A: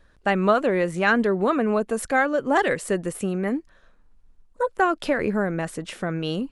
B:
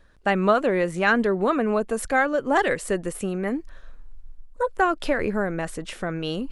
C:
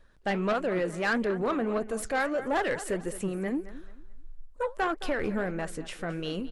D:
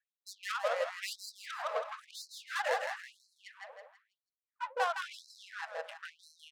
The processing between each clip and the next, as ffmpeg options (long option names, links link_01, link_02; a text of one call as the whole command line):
ffmpeg -i in.wav -af "asubboost=boost=4.5:cutoff=66,areverse,acompressor=mode=upward:threshold=-31dB:ratio=2.5,areverse" out.wav
ffmpeg -i in.wav -af "flanger=delay=1.2:depth=9.5:regen=74:speed=1.6:shape=triangular,aecho=1:1:217|434|651:0.141|0.0396|0.0111,asoftclip=type=tanh:threshold=-21dB" out.wav
ffmpeg -i in.wav -af "adynamicsmooth=sensitivity=5.5:basefreq=870,aecho=1:1:163|326|489|652|815:0.668|0.267|0.107|0.0428|0.0171,afftfilt=real='re*gte(b*sr/1024,440*pow(4000/440,0.5+0.5*sin(2*PI*0.99*pts/sr)))':imag='im*gte(b*sr/1024,440*pow(4000/440,0.5+0.5*sin(2*PI*0.99*pts/sr)))':win_size=1024:overlap=0.75,volume=-2.5dB" out.wav